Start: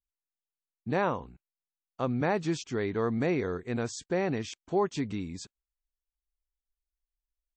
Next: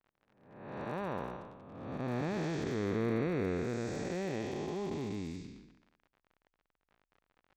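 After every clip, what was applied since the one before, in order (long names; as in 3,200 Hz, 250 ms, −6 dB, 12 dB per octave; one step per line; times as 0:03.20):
spectrum smeared in time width 541 ms
surface crackle 55 per second −45 dBFS
low-pass that shuts in the quiet parts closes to 1,800 Hz, open at −34 dBFS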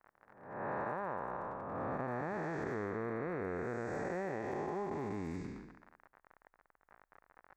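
drawn EQ curve 260 Hz 0 dB, 880 Hz +10 dB, 1,800 Hz +9 dB, 3,100 Hz −12 dB, 8,300 Hz −3 dB
downward compressor 10 to 1, threshold −39 dBFS, peak gain reduction 14 dB
level +4 dB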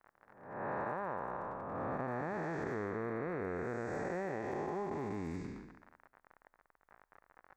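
tuned comb filter 85 Hz, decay 1.3 s, harmonics all, mix 30%
level +3 dB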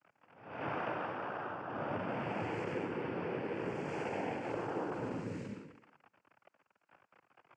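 cochlear-implant simulation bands 8
level +1 dB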